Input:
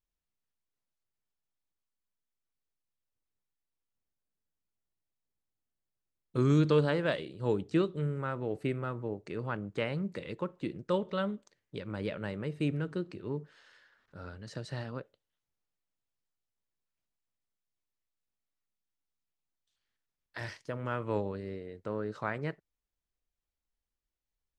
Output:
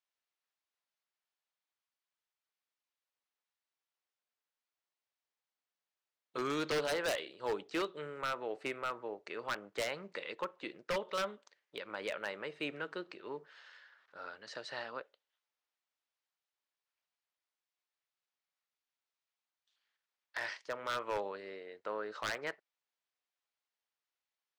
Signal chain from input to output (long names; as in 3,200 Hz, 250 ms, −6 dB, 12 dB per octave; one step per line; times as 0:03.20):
band-pass filter 690–5,000 Hz
wave folding −31.5 dBFS
level +4 dB